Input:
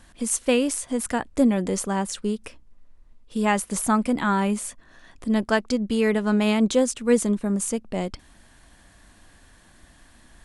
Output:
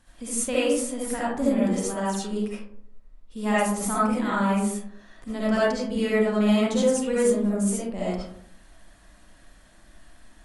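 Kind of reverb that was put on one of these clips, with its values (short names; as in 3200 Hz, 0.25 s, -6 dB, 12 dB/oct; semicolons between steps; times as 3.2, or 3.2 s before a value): digital reverb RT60 0.68 s, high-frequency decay 0.4×, pre-delay 30 ms, DRR -8.5 dB; gain -10 dB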